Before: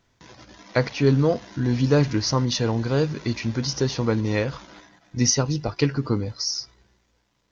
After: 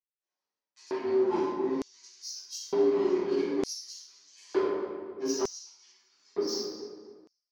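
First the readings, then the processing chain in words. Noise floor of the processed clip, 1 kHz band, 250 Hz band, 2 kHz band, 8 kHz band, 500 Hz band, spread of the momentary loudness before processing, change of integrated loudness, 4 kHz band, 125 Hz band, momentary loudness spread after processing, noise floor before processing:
below −85 dBFS, −6.0 dB, −9.0 dB, −15.0 dB, can't be measured, −3.0 dB, 7 LU, −7.5 dB, −11.5 dB, −31.5 dB, 17 LU, −67 dBFS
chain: frequency inversion band by band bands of 500 Hz
low-pass that shuts in the quiet parts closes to 520 Hz, open at −19 dBFS
parametric band 3,600 Hz −4.5 dB 2.7 octaves
reversed playback
downward compressor 20 to 1, threshold −32 dBFS, peak gain reduction 19.5 dB
reversed playback
harmonic generator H 7 −23 dB, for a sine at −23 dBFS
on a send: feedback echo with a low-pass in the loop 258 ms, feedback 41%, low-pass 2,300 Hz, level −10 dB
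on the sum: rectangular room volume 540 cubic metres, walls mixed, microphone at 6.5 metres
auto-filter high-pass square 0.55 Hz 410–6,200 Hz
level −8 dB

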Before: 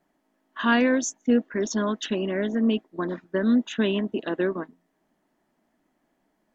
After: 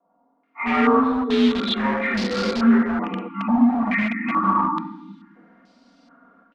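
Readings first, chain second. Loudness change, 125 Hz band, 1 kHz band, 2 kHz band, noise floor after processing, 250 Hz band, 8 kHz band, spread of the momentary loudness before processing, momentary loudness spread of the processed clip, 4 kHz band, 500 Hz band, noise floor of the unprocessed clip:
+4.5 dB, +3.0 dB, +11.5 dB, +4.5 dB, −66 dBFS, +5.0 dB, can't be measured, 9 LU, 9 LU, +5.0 dB, +0.5 dB, −73 dBFS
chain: partials spread apart or drawn together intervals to 84%
comb filter 4.3 ms, depth 84%
on a send: feedback echo with a low-pass in the loop 82 ms, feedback 36%, low-pass 1,500 Hz, level −12 dB
on the sum: rectangular room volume 370 cubic metres, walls mixed, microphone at 3.2 metres
dynamic equaliser 730 Hz, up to +3 dB, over −19 dBFS, Q 0.76
high-pass filter 160 Hz 6 dB per octave
low-shelf EQ 310 Hz −3.5 dB
time-frequency box erased 0:03.28–0:05.36, 330–790 Hz
automatic gain control gain up to 11 dB
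in parallel at −7 dB: wrap-around overflow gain 14.5 dB
on the sum: low-pass on a step sequencer 2.3 Hz 870–4,700 Hz
level −7.5 dB

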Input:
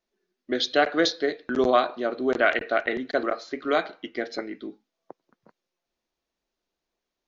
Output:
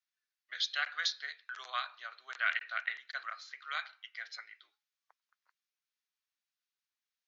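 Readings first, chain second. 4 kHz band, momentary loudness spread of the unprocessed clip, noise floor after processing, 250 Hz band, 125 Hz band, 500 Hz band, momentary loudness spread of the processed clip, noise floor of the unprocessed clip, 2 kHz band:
−6.5 dB, 12 LU, below −85 dBFS, below −40 dB, below −40 dB, −34.5 dB, 13 LU, −85 dBFS, −7.5 dB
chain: high-pass filter 1,300 Hz 24 dB per octave
level −6.5 dB

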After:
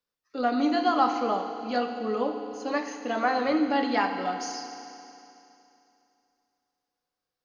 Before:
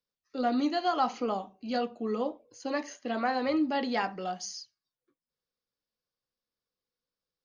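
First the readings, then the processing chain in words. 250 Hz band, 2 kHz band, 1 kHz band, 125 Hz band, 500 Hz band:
+3.5 dB, +5.5 dB, +5.0 dB, can't be measured, +3.5 dB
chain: parametric band 1,200 Hz +5.5 dB 2 octaves
feedback delay network reverb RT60 2.8 s, high-frequency decay 1×, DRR 5 dB

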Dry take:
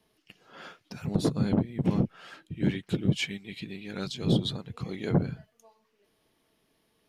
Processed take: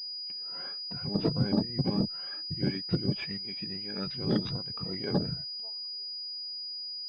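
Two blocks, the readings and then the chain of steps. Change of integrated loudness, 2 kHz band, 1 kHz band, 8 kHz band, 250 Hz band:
−2.0 dB, −5.0 dB, −1.5 dB, below −15 dB, −2.5 dB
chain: rippled gain that drifts along the octave scale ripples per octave 2, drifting +2.5 Hz, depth 13 dB
switching amplifier with a slow clock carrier 4,900 Hz
level −3.5 dB

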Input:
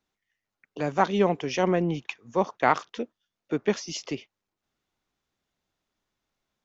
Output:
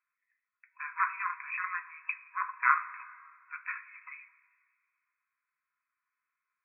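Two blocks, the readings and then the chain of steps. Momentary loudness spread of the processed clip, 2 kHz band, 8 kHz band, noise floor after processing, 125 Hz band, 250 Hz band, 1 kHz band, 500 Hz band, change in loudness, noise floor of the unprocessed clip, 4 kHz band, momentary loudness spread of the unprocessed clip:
20 LU, +1.5 dB, can't be measured, below −85 dBFS, below −40 dB, below −40 dB, −5.0 dB, below −40 dB, −6.0 dB, below −85 dBFS, below −40 dB, 13 LU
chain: harmonic generator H 4 −14 dB, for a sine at −6.5 dBFS
brick-wall band-pass 960–2,600 Hz
coupled-rooms reverb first 0.23 s, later 2 s, from −18 dB, DRR 5 dB

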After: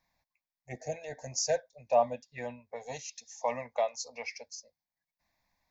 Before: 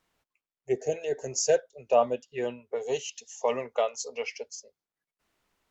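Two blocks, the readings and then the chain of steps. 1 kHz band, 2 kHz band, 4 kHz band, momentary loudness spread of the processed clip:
−1.0 dB, −3.0 dB, −2.5 dB, 16 LU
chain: phaser with its sweep stopped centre 2,000 Hz, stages 8

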